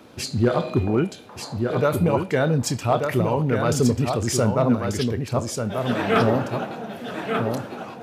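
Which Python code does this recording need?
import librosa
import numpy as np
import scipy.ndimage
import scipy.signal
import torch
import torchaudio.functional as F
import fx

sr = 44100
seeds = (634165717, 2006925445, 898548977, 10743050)

y = fx.fix_declip(x, sr, threshold_db=-9.5)
y = fx.fix_echo_inverse(y, sr, delay_ms=1188, level_db=-5.5)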